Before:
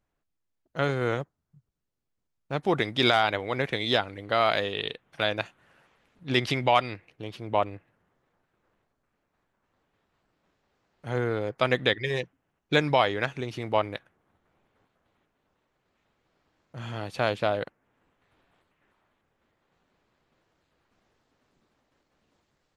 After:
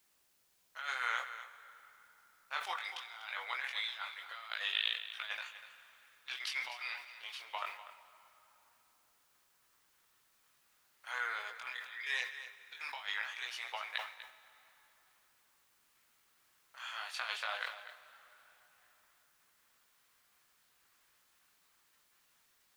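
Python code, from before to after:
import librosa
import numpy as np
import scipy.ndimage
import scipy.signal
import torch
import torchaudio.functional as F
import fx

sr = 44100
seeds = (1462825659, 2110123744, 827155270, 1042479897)

y = scipy.signal.sosfilt(scipy.signal.butter(4, 1100.0, 'highpass', fs=sr, output='sos'), x)
y = fx.over_compress(y, sr, threshold_db=-35.0, ratio=-0.5)
y = fx.chorus_voices(y, sr, voices=2, hz=0.21, base_ms=20, depth_ms=4.7, mix_pct=40)
y = fx.quant_dither(y, sr, seeds[0], bits=12, dither='triangular')
y = y + 10.0 ** (-13.0 / 20.0) * np.pad(y, (int(246 * sr / 1000.0), 0))[:len(y)]
y = fx.rev_plate(y, sr, seeds[1], rt60_s=3.7, hf_ratio=0.7, predelay_ms=0, drr_db=12.5)
y = fx.sustainer(y, sr, db_per_s=110.0)
y = y * 10.0 ** (-1.5 / 20.0)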